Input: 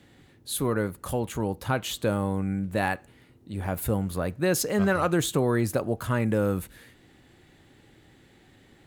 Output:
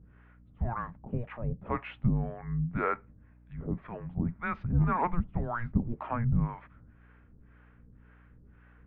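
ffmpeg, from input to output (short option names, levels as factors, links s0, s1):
-filter_complex "[0:a]acrossover=split=770[s0][s1];[s0]aeval=exprs='val(0)*(1-1/2+1/2*cos(2*PI*1.9*n/s))':c=same[s2];[s1]aeval=exprs='val(0)*(1-1/2-1/2*cos(2*PI*1.9*n/s))':c=same[s3];[s2][s3]amix=inputs=2:normalize=0,highpass=f=160:t=q:w=0.5412,highpass=f=160:t=q:w=1.307,lowpass=f=2500:t=q:w=0.5176,lowpass=f=2500:t=q:w=0.7071,lowpass=f=2500:t=q:w=1.932,afreqshift=-350,aeval=exprs='val(0)+0.00126*(sin(2*PI*60*n/s)+sin(2*PI*2*60*n/s)/2+sin(2*PI*3*60*n/s)/3+sin(2*PI*4*60*n/s)/4+sin(2*PI*5*60*n/s)/5)':c=same,volume=1.19"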